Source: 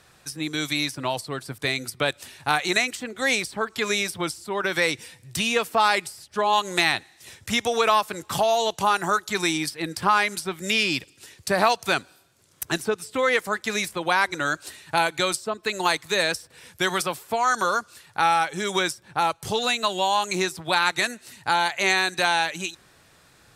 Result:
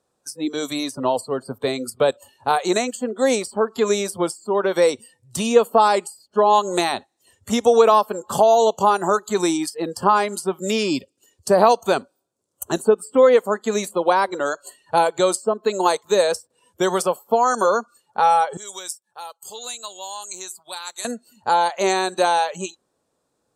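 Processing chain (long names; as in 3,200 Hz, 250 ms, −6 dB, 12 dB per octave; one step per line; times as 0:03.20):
octave-band graphic EQ 250/500/1,000/2,000/8,000 Hz +10/+12/+7/−7/+8 dB
noise reduction from a noise print of the clip's start 20 dB
0:18.57–0:21.05: first-order pre-emphasis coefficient 0.97
level −3.5 dB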